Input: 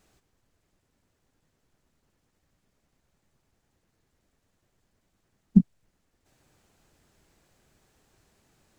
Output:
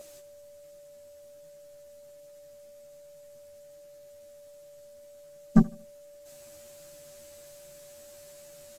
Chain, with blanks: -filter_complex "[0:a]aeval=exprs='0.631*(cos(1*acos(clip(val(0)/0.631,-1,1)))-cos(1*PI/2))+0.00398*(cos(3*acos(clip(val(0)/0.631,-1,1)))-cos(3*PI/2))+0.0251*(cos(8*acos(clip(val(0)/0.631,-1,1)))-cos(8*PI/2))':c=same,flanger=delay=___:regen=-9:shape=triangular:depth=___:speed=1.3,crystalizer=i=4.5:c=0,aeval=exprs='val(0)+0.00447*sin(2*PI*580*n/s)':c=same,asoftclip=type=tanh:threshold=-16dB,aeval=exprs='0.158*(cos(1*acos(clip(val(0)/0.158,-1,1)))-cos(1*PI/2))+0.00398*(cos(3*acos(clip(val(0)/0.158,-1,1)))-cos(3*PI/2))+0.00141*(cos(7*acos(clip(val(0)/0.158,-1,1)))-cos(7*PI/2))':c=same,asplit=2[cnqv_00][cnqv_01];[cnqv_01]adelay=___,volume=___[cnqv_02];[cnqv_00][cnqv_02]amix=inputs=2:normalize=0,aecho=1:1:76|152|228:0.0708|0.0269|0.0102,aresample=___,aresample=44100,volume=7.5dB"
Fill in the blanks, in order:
5.6, 4.1, 13, -3.5dB, 32000